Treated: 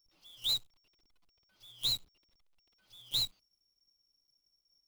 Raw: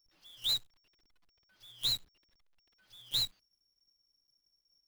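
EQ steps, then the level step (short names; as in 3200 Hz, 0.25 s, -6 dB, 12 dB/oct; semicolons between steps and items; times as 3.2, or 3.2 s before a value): bell 1700 Hz -9 dB 0.43 oct; 0.0 dB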